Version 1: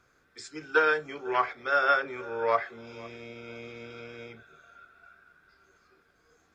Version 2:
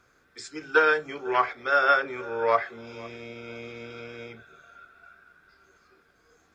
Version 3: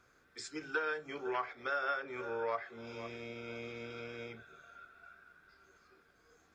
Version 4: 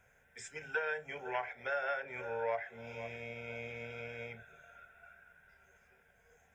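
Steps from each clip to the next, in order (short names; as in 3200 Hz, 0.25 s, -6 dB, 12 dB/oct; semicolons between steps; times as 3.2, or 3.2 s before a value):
notches 50/100/150 Hz; gain +3 dB
compressor 3:1, threshold -31 dBFS, peak gain reduction 12.5 dB; gain -4.5 dB
fixed phaser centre 1200 Hz, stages 6; gain +4 dB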